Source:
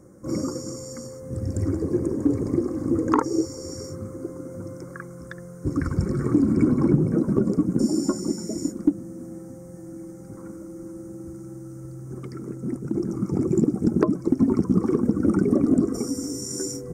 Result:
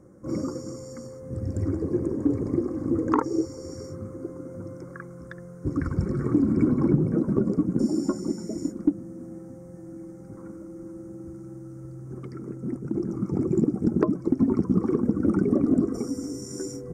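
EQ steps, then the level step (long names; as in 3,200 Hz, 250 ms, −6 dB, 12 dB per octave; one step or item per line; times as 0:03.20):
high-shelf EQ 4,500 Hz −10 dB
−2.0 dB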